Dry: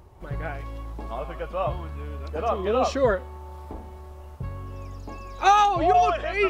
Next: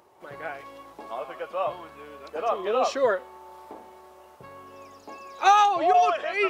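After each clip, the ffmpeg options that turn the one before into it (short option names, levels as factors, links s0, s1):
-af "highpass=390"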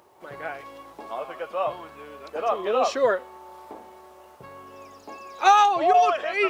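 -af "acrusher=bits=11:mix=0:aa=0.000001,volume=1.19"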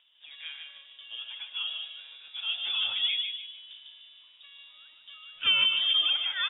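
-filter_complex "[0:a]asplit=2[s0][s1];[s1]adelay=150,lowpass=f=1800:p=1,volume=0.668,asplit=2[s2][s3];[s3]adelay=150,lowpass=f=1800:p=1,volume=0.43,asplit=2[s4][s5];[s5]adelay=150,lowpass=f=1800:p=1,volume=0.43,asplit=2[s6][s7];[s7]adelay=150,lowpass=f=1800:p=1,volume=0.43,asplit=2[s8][s9];[s9]adelay=150,lowpass=f=1800:p=1,volume=0.43[s10];[s0][s2][s4][s6][s8][s10]amix=inputs=6:normalize=0,lowpass=f=3300:t=q:w=0.5098,lowpass=f=3300:t=q:w=0.6013,lowpass=f=3300:t=q:w=0.9,lowpass=f=3300:t=q:w=2.563,afreqshift=-3900,volume=0.376"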